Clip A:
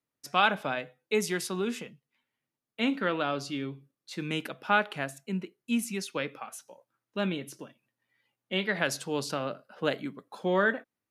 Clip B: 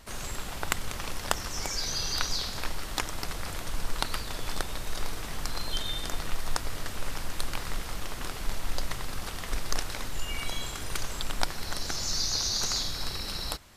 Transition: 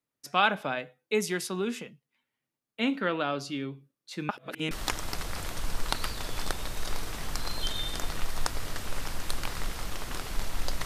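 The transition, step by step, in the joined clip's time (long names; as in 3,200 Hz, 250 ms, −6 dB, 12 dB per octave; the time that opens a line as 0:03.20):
clip A
0:04.29–0:04.71: reverse
0:04.71: continue with clip B from 0:02.81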